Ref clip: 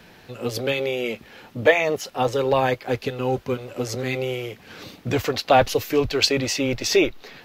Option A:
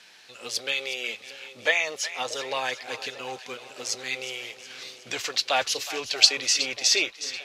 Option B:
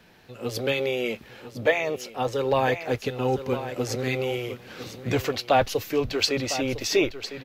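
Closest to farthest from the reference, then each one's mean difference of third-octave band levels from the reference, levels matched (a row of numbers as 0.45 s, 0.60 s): B, A; 2.5 dB, 8.5 dB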